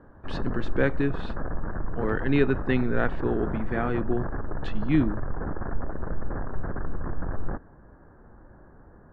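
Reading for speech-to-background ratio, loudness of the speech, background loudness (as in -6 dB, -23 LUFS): 7.5 dB, -28.0 LUFS, -35.5 LUFS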